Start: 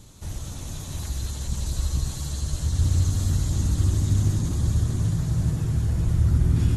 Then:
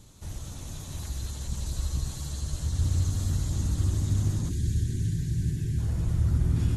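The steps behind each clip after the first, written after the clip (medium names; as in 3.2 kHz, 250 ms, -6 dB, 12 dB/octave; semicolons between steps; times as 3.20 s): time-frequency box 4.50–5.79 s, 440–1500 Hz -19 dB; trim -4.5 dB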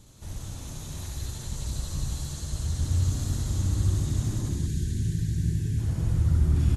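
loudspeakers at several distances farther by 22 m -4 dB, 58 m -5 dB; trim -1 dB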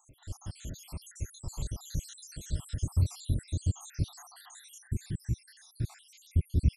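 random holes in the spectrogram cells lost 78%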